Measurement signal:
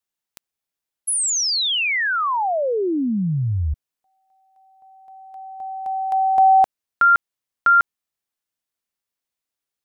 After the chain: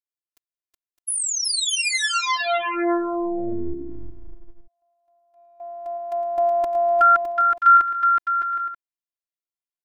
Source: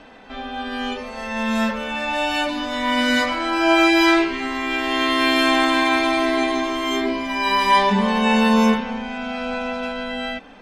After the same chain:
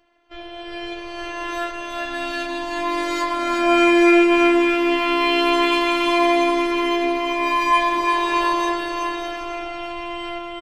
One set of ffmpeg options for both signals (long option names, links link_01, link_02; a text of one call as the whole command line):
ffmpeg -i in.wav -af "agate=range=-14dB:threshold=-36dB:ratio=16:release=102:detection=peak,aecho=1:1:370|610.5|766.8|868.4|934.5:0.631|0.398|0.251|0.158|0.1,afftfilt=real='hypot(re,im)*cos(PI*b)':imag='0':win_size=512:overlap=0.75" out.wav